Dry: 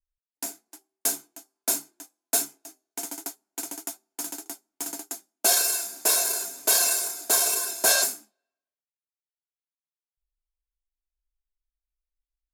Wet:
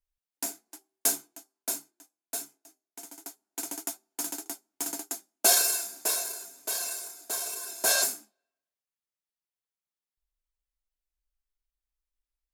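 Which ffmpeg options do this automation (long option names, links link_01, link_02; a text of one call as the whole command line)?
ffmpeg -i in.wav -af "volume=21dB,afade=type=out:start_time=1.09:duration=0.83:silence=0.281838,afade=type=in:start_time=3.15:duration=0.61:silence=0.281838,afade=type=out:start_time=5.46:duration=0.9:silence=0.281838,afade=type=in:start_time=7.58:duration=0.57:silence=0.316228" out.wav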